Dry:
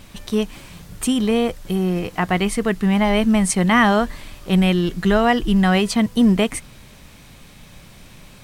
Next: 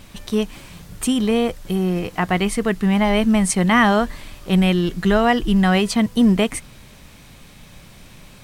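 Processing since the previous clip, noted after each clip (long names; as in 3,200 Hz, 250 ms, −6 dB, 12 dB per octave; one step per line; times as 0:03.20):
no processing that can be heard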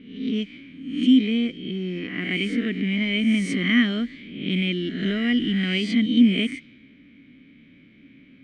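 peak hold with a rise ahead of every peak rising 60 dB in 0.76 s
low-pass that shuts in the quiet parts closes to 1,700 Hz, open at −11 dBFS
formant filter i
level +6.5 dB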